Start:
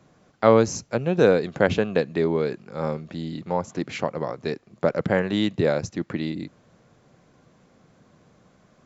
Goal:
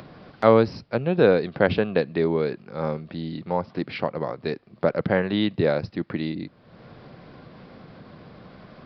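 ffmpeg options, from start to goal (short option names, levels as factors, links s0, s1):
-af "aresample=11025,aresample=44100,acompressor=mode=upward:threshold=0.0224:ratio=2.5"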